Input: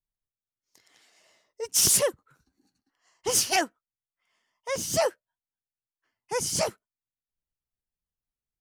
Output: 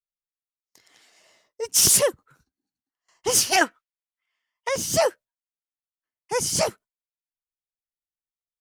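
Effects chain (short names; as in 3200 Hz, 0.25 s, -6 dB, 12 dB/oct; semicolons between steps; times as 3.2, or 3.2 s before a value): gate with hold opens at -54 dBFS; 3.61–4.69 bell 2300 Hz +13.5 dB 2.7 oct; gain +4 dB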